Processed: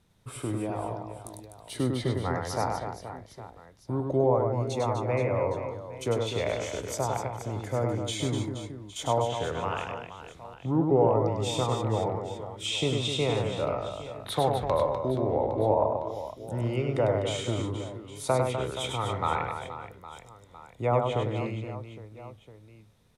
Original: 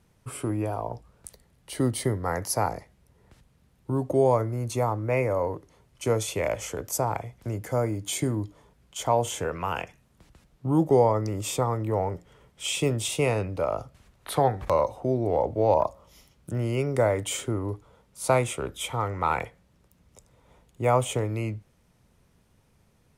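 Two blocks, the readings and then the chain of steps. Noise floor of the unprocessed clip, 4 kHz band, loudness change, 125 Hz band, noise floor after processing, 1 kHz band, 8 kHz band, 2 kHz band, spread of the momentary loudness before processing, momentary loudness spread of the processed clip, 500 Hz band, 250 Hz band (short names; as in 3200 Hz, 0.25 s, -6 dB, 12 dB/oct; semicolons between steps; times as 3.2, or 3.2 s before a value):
-64 dBFS, +2.0 dB, -2.0 dB, -1.0 dB, -54 dBFS, -2.0 dB, -6.5 dB, -2.5 dB, 12 LU, 16 LU, -1.5 dB, -1.5 dB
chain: treble ducked by the level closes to 1300 Hz, closed at -18 dBFS; bell 3700 Hz +10 dB 0.23 oct; on a send: reverse bouncing-ball echo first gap 0.1 s, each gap 1.5×, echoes 5; on the sum: gain -3.5 dB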